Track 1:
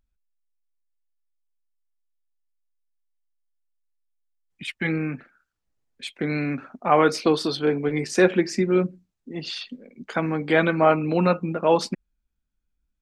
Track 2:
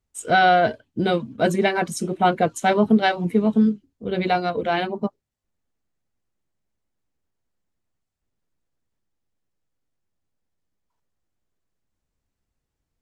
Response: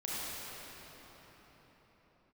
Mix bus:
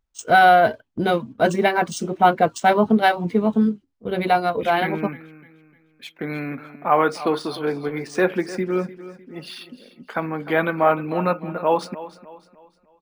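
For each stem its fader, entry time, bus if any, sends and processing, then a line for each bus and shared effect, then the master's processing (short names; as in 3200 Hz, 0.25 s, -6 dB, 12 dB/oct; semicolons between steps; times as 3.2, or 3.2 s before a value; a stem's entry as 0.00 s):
-4.0 dB, 0.00 s, no send, echo send -15.5 dB, dry
-1.5 dB, 0.00 s, no send, no echo send, gate -34 dBFS, range -9 dB; high shelf 8500 Hz +9.5 dB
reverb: off
echo: feedback echo 0.303 s, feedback 39%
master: bell 1000 Hz +6.5 dB 1.7 oct; decimation joined by straight lines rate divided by 3×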